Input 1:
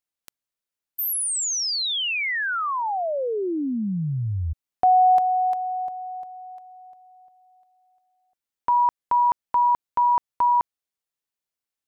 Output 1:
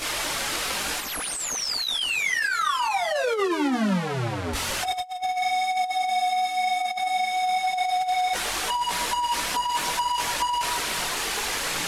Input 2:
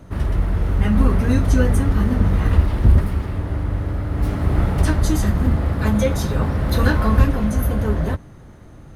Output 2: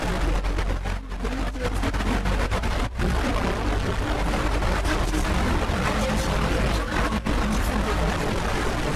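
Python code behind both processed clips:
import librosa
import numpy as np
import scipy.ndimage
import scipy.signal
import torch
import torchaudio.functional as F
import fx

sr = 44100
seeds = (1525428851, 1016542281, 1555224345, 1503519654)

y = fx.delta_mod(x, sr, bps=64000, step_db=-13.5)
y = fx.echo_alternate(y, sr, ms=154, hz=1500.0, feedback_pct=59, wet_db=-10.0)
y = fx.chorus_voices(y, sr, voices=6, hz=0.6, base_ms=20, depth_ms=3.6, mix_pct=65)
y = fx.low_shelf(y, sr, hz=360.0, db=-7.0)
y = fx.over_compress(y, sr, threshold_db=-22.0, ratio=-0.5)
y = fx.high_shelf(y, sr, hz=4900.0, db=-11.5)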